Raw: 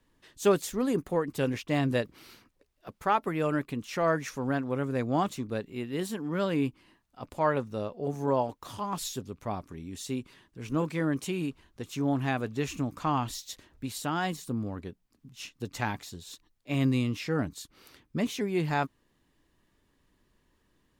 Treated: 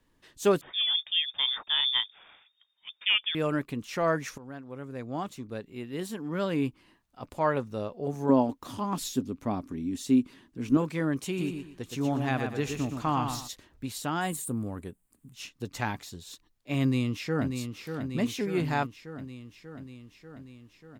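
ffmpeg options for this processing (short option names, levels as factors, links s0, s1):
-filter_complex "[0:a]asettb=1/sr,asplit=3[s0][s1][s2];[s0]atrim=end=0.614[s3];[s1]atrim=start=0.61:end=3.35,asetpts=PTS-STARTPTS,afade=t=in:d=0.004:c=qsin,afade=t=out:st=2.736:d=0.004:c=qsin,lowpass=f=3100:t=q:w=0.5098,lowpass=f=3100:t=q:w=0.6013,lowpass=f=3100:t=q:w=0.9,lowpass=f=3100:t=q:w=2.563,afreqshift=-3700[s4];[s2]atrim=start=3.346[s5];[s3][s4]acrossfade=d=0.004:c1=hsin:c2=qsin[s6];[s6][s5]acrossfade=d=0.004:c1=qsin:c2=hsin,asettb=1/sr,asplit=3[s7][s8][s9];[s7]atrim=end=8.294[s10];[s8]atrim=start=8.29:end=10.77,asetpts=PTS-STARTPTS,afade=t=in:d=0.004:c=qsin,afade=t=out:st=2.476:d=0.004:c=qsin,equalizer=f=260:t=o:w=0.65:g=13[s11];[s9]atrim=start=10.766[s12];[s10][s11]acrossfade=d=0.004:c1=hsin:c2=qsin[s13];[s13][s12]acrossfade=d=0.004:c1=qsin:c2=hsin,asplit=3[s14][s15][s16];[s14]afade=t=out:st=11.37:d=0.02[s17];[s15]aecho=1:1:119|238|357|476:0.501|0.145|0.0421|0.0122,afade=t=in:st=11.37:d=0.02,afade=t=out:st=13.47:d=0.02[s18];[s16]afade=t=in:st=13.47:d=0.02[s19];[s17][s18][s19]amix=inputs=3:normalize=0,asettb=1/sr,asplit=3[s20][s21][s22];[s20]atrim=end=14.214[s23];[s21]atrim=start=14.21:end=15.34,asetpts=PTS-STARTPTS,afade=t=in:d=0.004:c=qsin,afade=t=out:st=1.126:d=0.004:c=qsin,highshelf=f=6900:t=q:w=3:g=8.5[s24];[s22]atrim=start=15.336[s25];[s23][s24]acrossfade=d=0.004:c1=hsin:c2=qsin[s26];[s26][s25]acrossfade=d=0.004:c1=qsin:c2=hsin,asplit=2[s27][s28];[s28]afade=t=in:st=16.82:d=0.01,afade=t=out:st=17.52:d=0.01,aecho=0:1:590|1180|1770|2360|2950|3540|4130|4720|5310|5900|6490:0.446684|0.312679|0.218875|0.153212|0.107249|0.0750741|0.0525519|0.0367863|0.0257504|0.0180253|0.0126177[s29];[s27][s29]amix=inputs=2:normalize=0,asplit=2[s30][s31];[s30]atrim=end=4.38,asetpts=PTS-STARTPTS,afade=t=out:st=4.376:d=0.004:c=hsin:silence=0.16788[s32];[s31]atrim=start=4.38,asetpts=PTS-STARTPTS,afade=t=in:d=2.29:silence=0.16788[s33];[s32][s33]concat=n=2:v=0:a=1"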